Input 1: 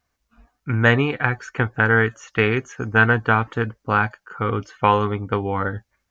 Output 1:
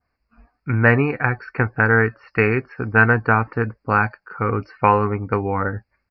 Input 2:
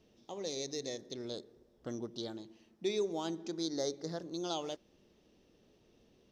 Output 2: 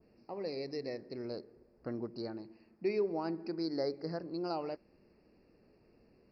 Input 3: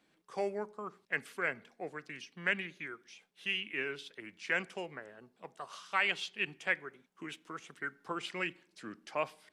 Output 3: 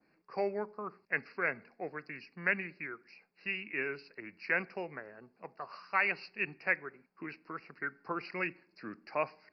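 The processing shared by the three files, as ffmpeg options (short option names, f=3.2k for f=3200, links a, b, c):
-af "adynamicequalizer=threshold=0.0126:dfrequency=3100:dqfactor=1:tfrequency=3100:tqfactor=1:attack=5:release=100:ratio=0.375:range=2.5:mode=cutabove:tftype=bell,asuperstop=centerf=3400:order=8:qfactor=2.1,aresample=11025,aresample=44100,volume=1.5dB"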